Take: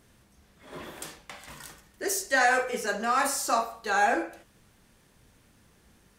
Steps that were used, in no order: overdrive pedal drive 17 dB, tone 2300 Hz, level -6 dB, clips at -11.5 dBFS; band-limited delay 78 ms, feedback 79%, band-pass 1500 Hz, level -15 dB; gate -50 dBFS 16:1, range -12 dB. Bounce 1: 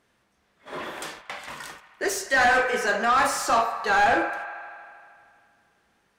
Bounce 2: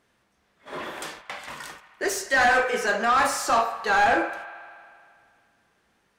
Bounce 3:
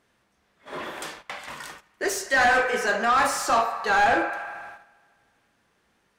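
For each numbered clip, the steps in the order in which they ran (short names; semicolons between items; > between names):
gate > band-limited delay > overdrive pedal; gate > overdrive pedal > band-limited delay; band-limited delay > gate > overdrive pedal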